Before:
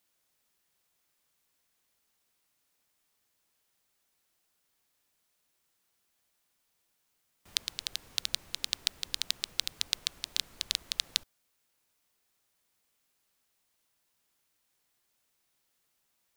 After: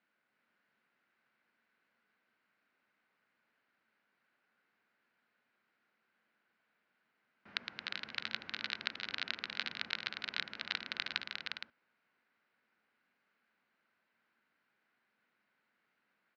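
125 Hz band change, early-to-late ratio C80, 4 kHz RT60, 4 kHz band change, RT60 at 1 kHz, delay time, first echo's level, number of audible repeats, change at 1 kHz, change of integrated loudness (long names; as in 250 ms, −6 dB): −3.5 dB, no reverb audible, no reverb audible, −7.5 dB, no reverb audible, 312 ms, −8.0 dB, 4, +5.0 dB, −6.5 dB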